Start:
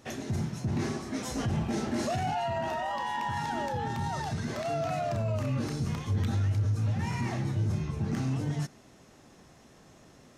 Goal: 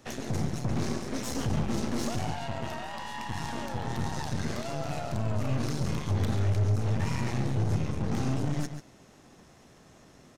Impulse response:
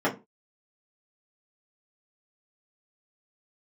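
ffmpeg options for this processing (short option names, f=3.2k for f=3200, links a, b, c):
-filter_complex "[0:a]acrossover=split=310|3000[a][b][c];[b]acompressor=threshold=-40dB:ratio=4[d];[a][d][c]amix=inputs=3:normalize=0,aeval=exprs='0.106*(cos(1*acos(clip(val(0)/0.106,-1,1)))-cos(1*PI/2))+0.0168*(cos(8*acos(clip(val(0)/0.106,-1,1)))-cos(8*PI/2))':c=same,asplit=2[e][f];[f]adelay=139.9,volume=-9dB,highshelf=f=4k:g=-3.15[g];[e][g]amix=inputs=2:normalize=0"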